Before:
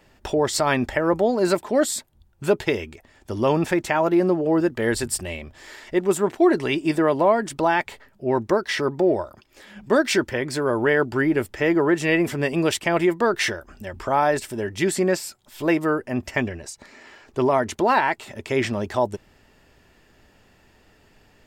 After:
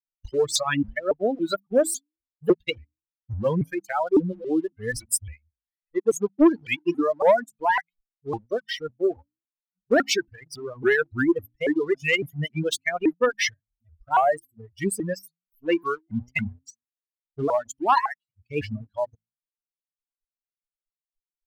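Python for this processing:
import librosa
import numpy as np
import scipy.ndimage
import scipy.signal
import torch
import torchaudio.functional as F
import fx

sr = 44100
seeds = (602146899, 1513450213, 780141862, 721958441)

y = fx.bin_expand(x, sr, power=3.0)
y = fx.hum_notches(y, sr, base_hz=60, count=5)
y = fx.leveller(y, sr, passes=1)
y = fx.dereverb_blind(y, sr, rt60_s=1.7)
y = fx.vibrato_shape(y, sr, shape='saw_up', rate_hz=3.6, depth_cents=250.0)
y = y * 10.0 ** (2.5 / 20.0)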